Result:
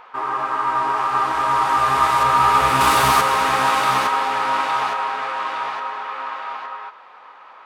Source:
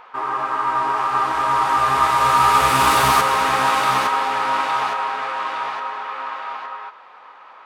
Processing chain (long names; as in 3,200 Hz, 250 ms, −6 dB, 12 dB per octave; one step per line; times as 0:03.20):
0:02.23–0:02.81: high-shelf EQ 4,000 Hz −6.5 dB